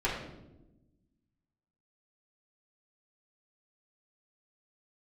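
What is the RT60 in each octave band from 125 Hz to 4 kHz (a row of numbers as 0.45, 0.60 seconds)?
1.7, 1.7, 1.2, 0.75, 0.65, 0.65 seconds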